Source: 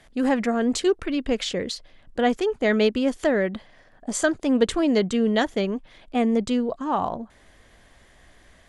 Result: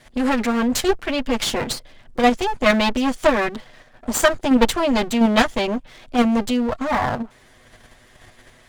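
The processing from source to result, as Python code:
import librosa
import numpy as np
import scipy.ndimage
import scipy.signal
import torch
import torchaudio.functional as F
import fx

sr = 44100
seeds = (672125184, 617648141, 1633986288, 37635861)

p1 = fx.lower_of_two(x, sr, delay_ms=8.1)
p2 = fx.dynamic_eq(p1, sr, hz=350.0, q=1.4, threshold_db=-34.0, ratio=4.0, max_db=-6)
p3 = fx.level_steps(p2, sr, step_db=11)
p4 = p2 + (p3 * librosa.db_to_amplitude(2.5))
y = p4 * librosa.db_to_amplitude(2.0)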